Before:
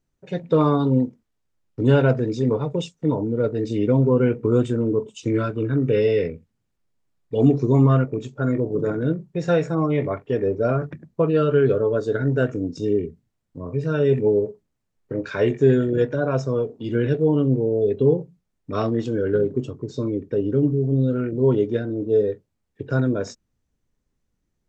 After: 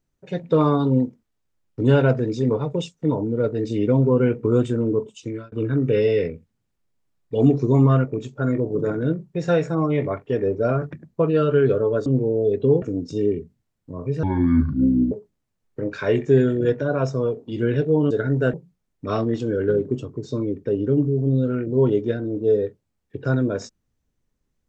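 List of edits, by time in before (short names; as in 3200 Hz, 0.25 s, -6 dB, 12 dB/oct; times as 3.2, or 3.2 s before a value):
5.02–5.52 fade out
12.06–12.49 swap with 17.43–18.19
13.9–14.44 speed 61%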